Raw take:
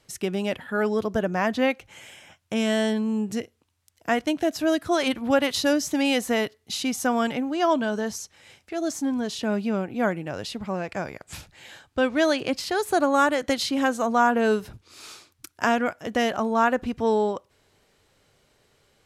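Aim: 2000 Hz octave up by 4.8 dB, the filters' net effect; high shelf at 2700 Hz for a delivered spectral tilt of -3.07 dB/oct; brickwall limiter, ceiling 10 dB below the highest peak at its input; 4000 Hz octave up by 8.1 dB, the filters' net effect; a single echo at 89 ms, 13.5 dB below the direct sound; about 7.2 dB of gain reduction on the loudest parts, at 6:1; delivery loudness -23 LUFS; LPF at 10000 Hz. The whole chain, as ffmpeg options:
-af "lowpass=10k,equalizer=f=2k:t=o:g=3.5,highshelf=f=2.7k:g=3.5,equalizer=f=4k:t=o:g=6.5,acompressor=threshold=-21dB:ratio=6,alimiter=limit=-16.5dB:level=0:latency=1,aecho=1:1:89:0.211,volume=4.5dB"

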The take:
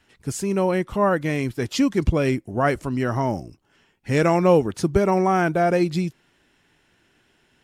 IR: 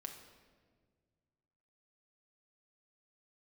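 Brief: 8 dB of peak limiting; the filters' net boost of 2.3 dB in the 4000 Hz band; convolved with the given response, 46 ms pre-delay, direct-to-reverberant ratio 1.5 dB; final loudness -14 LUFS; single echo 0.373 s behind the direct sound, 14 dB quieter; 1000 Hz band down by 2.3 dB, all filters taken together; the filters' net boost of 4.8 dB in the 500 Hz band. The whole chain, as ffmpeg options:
-filter_complex "[0:a]equalizer=f=500:t=o:g=8,equalizer=f=1k:t=o:g=-8,equalizer=f=4k:t=o:g=3.5,alimiter=limit=-10.5dB:level=0:latency=1,aecho=1:1:373:0.2,asplit=2[a][b];[1:a]atrim=start_sample=2205,adelay=46[c];[b][c]afir=irnorm=-1:irlink=0,volume=2dB[d];[a][d]amix=inputs=2:normalize=0,volume=4dB"

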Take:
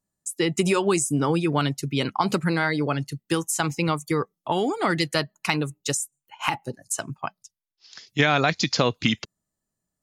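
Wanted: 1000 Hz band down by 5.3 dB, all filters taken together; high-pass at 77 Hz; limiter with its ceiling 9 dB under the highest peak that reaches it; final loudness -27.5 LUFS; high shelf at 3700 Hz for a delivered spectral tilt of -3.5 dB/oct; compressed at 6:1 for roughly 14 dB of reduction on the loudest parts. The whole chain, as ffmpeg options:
-af "highpass=77,equalizer=f=1k:t=o:g=-8,highshelf=f=3.7k:g=9,acompressor=threshold=-31dB:ratio=6,volume=8.5dB,alimiter=limit=-14dB:level=0:latency=1"

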